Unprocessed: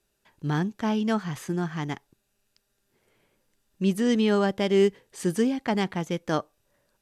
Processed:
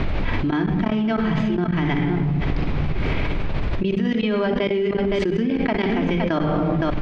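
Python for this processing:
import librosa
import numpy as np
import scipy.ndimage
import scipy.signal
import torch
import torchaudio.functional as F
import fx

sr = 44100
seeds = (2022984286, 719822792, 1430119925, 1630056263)

p1 = fx.low_shelf(x, sr, hz=270.0, db=3.5)
p2 = fx.room_shoebox(p1, sr, seeds[0], volume_m3=3800.0, walls='furnished', distance_m=2.9)
p3 = fx.level_steps(p2, sr, step_db=22)
p4 = fx.dmg_noise_colour(p3, sr, seeds[1], colour='brown', level_db=-54.0)
p5 = scipy.signal.sosfilt(scipy.signal.butter(4, 4000.0, 'lowpass', fs=sr, output='sos'), p4)
p6 = fx.peak_eq(p5, sr, hz=2300.0, db=5.5, octaves=0.45)
p7 = p6 + fx.echo_single(p6, sr, ms=515, db=-21.0, dry=0)
y = fx.env_flatten(p7, sr, amount_pct=100)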